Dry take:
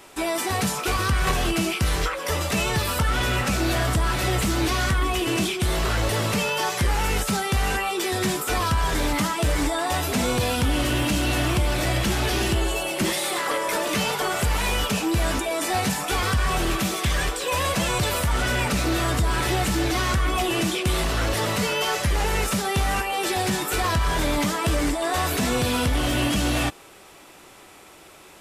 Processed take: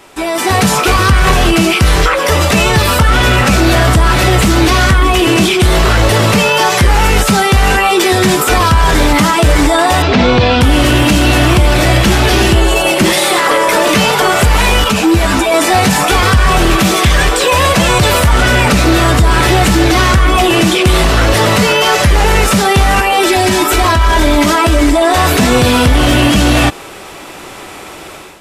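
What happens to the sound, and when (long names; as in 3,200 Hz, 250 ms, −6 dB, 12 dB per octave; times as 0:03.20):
0:10.02–0:10.61: low-pass filter 4,700 Hz 24 dB per octave
0:14.84–0:15.54: string-ensemble chorus
0:23.20–0:25.16: comb filter 3.1 ms, depth 69%
whole clip: high-shelf EQ 6,200 Hz −5.5 dB; automatic gain control gain up to 11.5 dB; boost into a limiter +8.5 dB; level −1 dB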